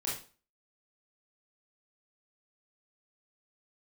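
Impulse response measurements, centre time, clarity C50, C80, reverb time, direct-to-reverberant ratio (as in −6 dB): 41 ms, 3.5 dB, 10.0 dB, 0.35 s, −6.0 dB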